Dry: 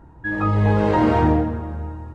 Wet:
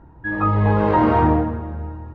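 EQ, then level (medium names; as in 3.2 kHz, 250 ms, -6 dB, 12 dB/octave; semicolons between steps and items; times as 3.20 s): Bessel low-pass 2.9 kHz, order 2; dynamic bell 1.1 kHz, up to +6 dB, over -37 dBFS, Q 2.2; 0.0 dB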